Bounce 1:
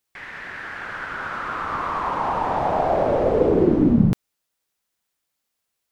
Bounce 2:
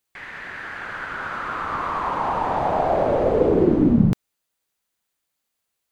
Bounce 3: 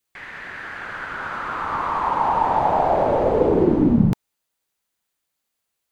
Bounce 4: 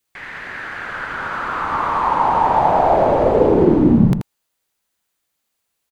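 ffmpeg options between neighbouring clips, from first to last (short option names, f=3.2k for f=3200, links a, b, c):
-af "bandreject=f=5.4k:w=15"
-af "adynamicequalizer=threshold=0.0112:dfrequency=890:dqfactor=4.8:tfrequency=890:tqfactor=4.8:attack=5:release=100:ratio=0.375:range=3.5:mode=boostabove:tftype=bell"
-af "aecho=1:1:82:0.422,volume=3.5dB"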